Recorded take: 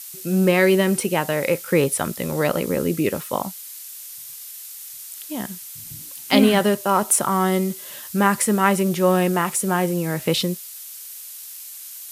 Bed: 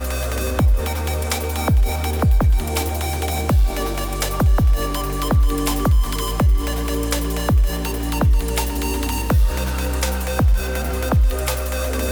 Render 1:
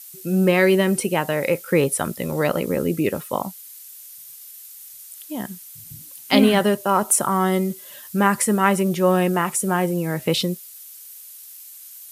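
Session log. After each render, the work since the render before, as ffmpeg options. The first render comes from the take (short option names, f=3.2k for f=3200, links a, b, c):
-af "afftdn=nr=7:nf=-38"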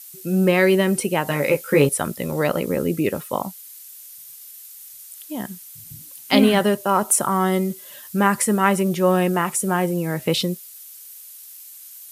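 -filter_complex "[0:a]asettb=1/sr,asplit=3[a][b][c];[a]atrim=end=1.254[d];[b]atrim=start=1.25:end=1.89,asetpts=PTS-STARTPTS,afade=t=in:d=0.004:c=qsin,afade=t=out:st=0.636:d=0.004:c=qsin,asplit=2[e][f];[f]adelay=14,volume=-2dB[g];[e][g]amix=inputs=2:normalize=0,atrim=end_sample=28224[h];[c]atrim=start=1.886[i];[d][h]acrossfade=d=0.004:c1=hsin:c2=qsin[j];[j][i]acrossfade=d=0.004:c1=qsin:c2=hsin"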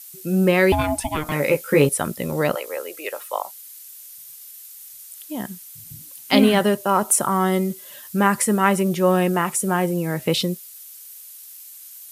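-filter_complex "[0:a]asettb=1/sr,asplit=3[a][b][c];[a]atrim=end=0.724[d];[b]atrim=start=0.72:end=1.32,asetpts=PTS-STARTPTS,afade=t=in:d=0.004:c=qsin,afade=t=out:st=0.596:d=0.004:c=qsin,aeval=exprs='val(0)*sin(2*PI*460*n/s)':c=same[e];[c]atrim=start=1.316[f];[d][e]acrossfade=d=0.004:c1=hsin:c2=qsin[g];[g][f]acrossfade=d=0.004:c1=qsin:c2=hsin,asettb=1/sr,asplit=3[h][i][j];[h]atrim=end=2.554[k];[i]atrim=start=2.55:end=3.95,asetpts=PTS-STARTPTS,afade=t=in:d=0.004:c=qsin,afade=t=out:st=1.396:d=0.004:c=qsin,highpass=f=550:w=0.5412,highpass=f=550:w=1.3066[l];[j]atrim=start=3.946[m];[k][l]acrossfade=d=0.004:c1=hsin:c2=qsin[n];[n][m]acrossfade=d=0.004:c1=qsin:c2=hsin"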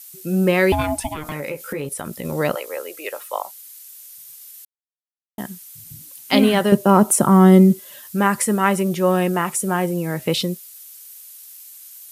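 -filter_complex "[0:a]asettb=1/sr,asplit=3[a][b][c];[a]atrim=end=1.124[d];[b]atrim=start=1.12:end=2.25,asetpts=PTS-STARTPTS,afade=t=in:d=0.004:c=qsin,afade=t=out:st=1.126:d=0.004:c=qsin,acompressor=threshold=-24dB:ratio=6:attack=3.2:release=140:knee=1:detection=peak[e];[c]atrim=start=2.246[f];[d][e]acrossfade=d=0.004:c1=hsin:c2=qsin[g];[g][f]acrossfade=d=0.004:c1=qsin:c2=hsin,asettb=1/sr,asplit=3[h][i][j];[h]atrim=end=6.724[k];[i]atrim=start=6.72:end=7.8,asetpts=PTS-STARTPTS,afade=t=in:d=0.004:c=qsin,afade=t=out:st=1.076:d=0.004:c=qsin,equalizer=f=190:w=0.47:g=12.5[l];[j]atrim=start=7.796[m];[k][l]acrossfade=d=0.004:c1=hsin:c2=qsin[n];[n][m]acrossfade=d=0.004:c1=qsin:c2=hsin,asplit=3[o][p][q];[o]atrim=end=4.65,asetpts=PTS-STARTPTS,afade=t=out:st=4.646:d=0.004:c=hsin[r];[p]atrim=start=4.65:end=5.38,asetpts=PTS-STARTPTS,volume=0[s];[q]atrim=start=5.38,asetpts=PTS-STARTPTS,afade=t=in:d=0.004:c=hsin[t];[r][s][t]concat=n=3:v=0:a=1"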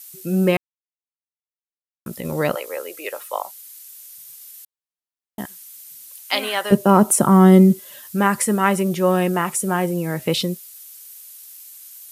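-filter_complex "[0:a]asettb=1/sr,asplit=3[a][b][c];[a]atrim=end=5.454[d];[b]atrim=start=5.45:end=6.71,asetpts=PTS-STARTPTS,afade=t=in:d=0.004:c=qsin,afade=t=out:st=1.256:d=0.004:c=qsin,highpass=770[e];[c]atrim=start=6.706[f];[d][e]acrossfade=d=0.004:c1=hsin:c2=qsin[g];[g][f]acrossfade=d=0.004:c1=qsin:c2=hsin,asplit=3[h][i][j];[h]atrim=end=0.57,asetpts=PTS-STARTPTS,afade=t=out:st=0.566:d=0.004:c=hsin[k];[i]atrim=start=0.57:end=2.06,asetpts=PTS-STARTPTS,volume=0[l];[j]atrim=start=2.06,asetpts=PTS-STARTPTS,afade=t=in:d=0.004:c=hsin[m];[k][l][m]concat=n=3:v=0:a=1"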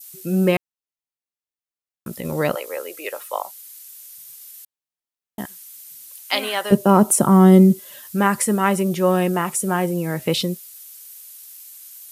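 -af "adynamicequalizer=threshold=0.0282:dfrequency=1700:dqfactor=0.96:tfrequency=1700:tqfactor=0.96:attack=5:release=100:ratio=0.375:range=2:mode=cutabove:tftype=bell"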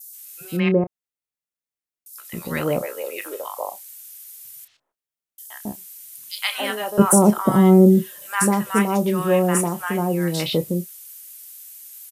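-filter_complex "[0:a]asplit=2[a][b];[b]adelay=29,volume=-12dB[c];[a][c]amix=inputs=2:normalize=0,acrossover=split=980|4400[d][e][f];[e]adelay=120[g];[d]adelay=270[h];[h][g][f]amix=inputs=3:normalize=0"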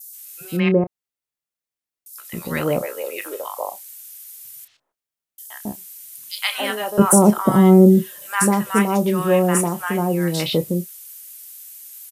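-af "volume=1.5dB,alimiter=limit=-1dB:level=0:latency=1"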